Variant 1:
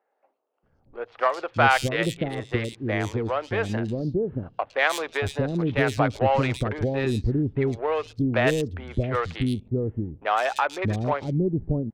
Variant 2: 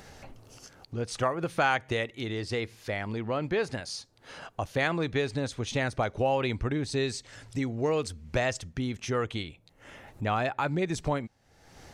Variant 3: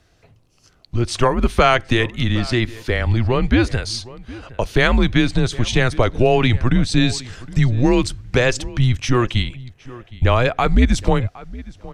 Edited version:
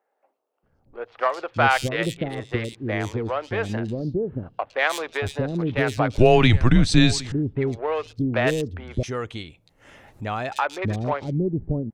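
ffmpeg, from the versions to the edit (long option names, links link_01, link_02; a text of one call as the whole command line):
ffmpeg -i take0.wav -i take1.wav -i take2.wav -filter_complex "[0:a]asplit=3[link_01][link_02][link_03];[link_01]atrim=end=6.182[link_04];[2:a]atrim=start=6.178:end=7.322[link_05];[link_02]atrim=start=7.318:end=9.032[link_06];[1:a]atrim=start=9.028:end=10.522[link_07];[link_03]atrim=start=10.518[link_08];[link_04][link_05]acrossfade=duration=0.004:curve1=hsin:curve2=hsin[link_09];[link_09][link_06]acrossfade=duration=0.004:curve1=hsin:curve2=hsin[link_10];[link_10][link_07]acrossfade=duration=0.004:curve1=hsin:curve2=hsin[link_11];[link_11][link_08]acrossfade=duration=0.004:curve1=hsin:curve2=hsin" out.wav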